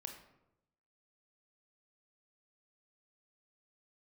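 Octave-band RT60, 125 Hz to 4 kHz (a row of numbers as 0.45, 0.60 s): 1.1, 1.0, 0.95, 0.80, 0.65, 0.50 s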